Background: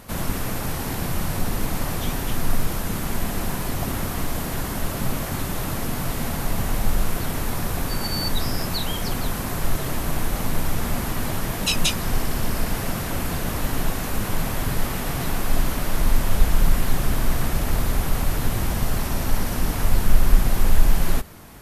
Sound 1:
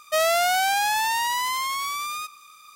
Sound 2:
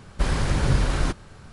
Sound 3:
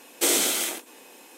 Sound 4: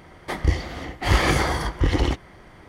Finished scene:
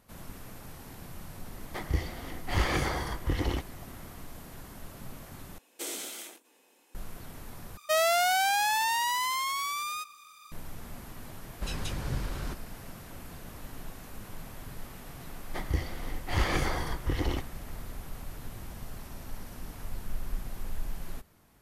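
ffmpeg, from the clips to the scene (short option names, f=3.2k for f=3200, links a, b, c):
-filter_complex "[4:a]asplit=2[a][b];[0:a]volume=-19dB,asplit=3[c][d][e];[c]atrim=end=5.584[f];[3:a]atrim=end=1.37,asetpts=PTS-STARTPTS,volume=-15.5dB[g];[d]atrim=start=6.946:end=7.774[h];[1:a]atrim=end=2.75,asetpts=PTS-STARTPTS,volume=-4dB[i];[e]atrim=start=10.516[j];[a]atrim=end=2.68,asetpts=PTS-STARTPTS,volume=-9dB,afade=t=in:d=0.004:c=hsin,afade=t=out:st=2.676:d=0.004:c=hsin,adelay=1460[k];[2:a]atrim=end=1.52,asetpts=PTS-STARTPTS,volume=-13dB,afade=t=in:d=0.004:c=hsin,afade=t=out:st=1.516:d=0.004:c=hsin,adelay=11420[l];[b]atrim=end=2.68,asetpts=PTS-STARTPTS,volume=-9.5dB,afade=t=in:d=0.004:c=hsin,afade=t=out:st=2.676:d=0.004:c=hsin,adelay=15260[m];[f][g]acrossfade=d=0.004:c1=hsin:c2=hsin[n];[n][h]acrossfade=d=0.004:c1=hsin:c2=hsin[o];[o][i]acrossfade=d=0.004:c1=hsin:c2=hsin[p];[p][j]acrossfade=d=0.004:c1=hsin:c2=hsin[q];[q][k][l][m]amix=inputs=4:normalize=0"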